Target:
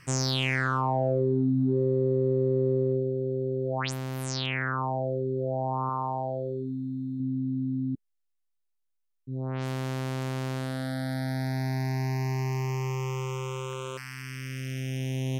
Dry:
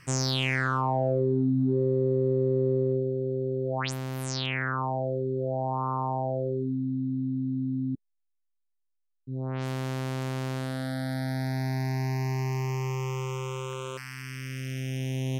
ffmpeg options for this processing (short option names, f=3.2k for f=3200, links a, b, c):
-filter_complex "[0:a]asettb=1/sr,asplit=3[a][b][c];[a]atrim=end=5.894[d];[b]atrim=start=5.89:end=7.2,asetpts=PTS-STARTPTS,afade=t=in:d=0.004:c=qsin,afade=t=out:st=1.306:d=0.004:c=qsin,tiltshelf=f=970:g=-4[e];[c]atrim=start=7.196[f];[d][e]acrossfade=d=0.004:c1=hsin:c2=qsin[g];[g][f]acrossfade=d=0.004:c1=qsin:c2=hsin"